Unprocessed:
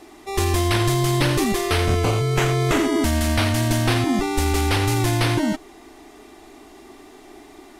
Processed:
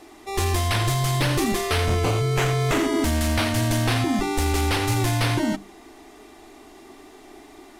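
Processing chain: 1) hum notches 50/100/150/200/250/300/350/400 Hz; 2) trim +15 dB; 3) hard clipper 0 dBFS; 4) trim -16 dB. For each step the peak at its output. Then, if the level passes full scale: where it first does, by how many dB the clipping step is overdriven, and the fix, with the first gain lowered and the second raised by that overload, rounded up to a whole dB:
-8.0 dBFS, +7.0 dBFS, 0.0 dBFS, -16.0 dBFS; step 2, 7.0 dB; step 2 +8 dB, step 4 -9 dB

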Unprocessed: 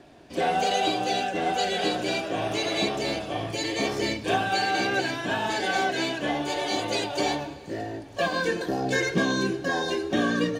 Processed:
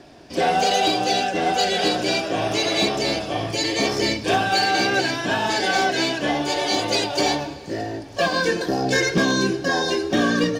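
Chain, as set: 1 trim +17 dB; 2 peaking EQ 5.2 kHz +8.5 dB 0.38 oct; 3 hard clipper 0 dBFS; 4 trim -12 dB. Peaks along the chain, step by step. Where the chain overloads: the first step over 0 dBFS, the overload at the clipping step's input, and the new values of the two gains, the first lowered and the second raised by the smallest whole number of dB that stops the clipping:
+6.5 dBFS, +7.0 dBFS, 0.0 dBFS, -12.0 dBFS; step 1, 7.0 dB; step 1 +10 dB, step 4 -5 dB

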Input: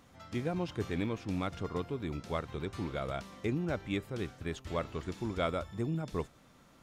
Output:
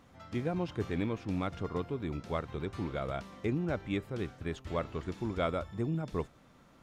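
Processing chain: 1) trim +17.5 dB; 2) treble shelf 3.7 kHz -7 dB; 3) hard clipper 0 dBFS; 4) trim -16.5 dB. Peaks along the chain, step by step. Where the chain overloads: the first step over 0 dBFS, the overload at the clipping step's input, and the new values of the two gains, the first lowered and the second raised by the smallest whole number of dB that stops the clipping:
-2.5 dBFS, -3.5 dBFS, -3.5 dBFS, -20.0 dBFS; nothing clips

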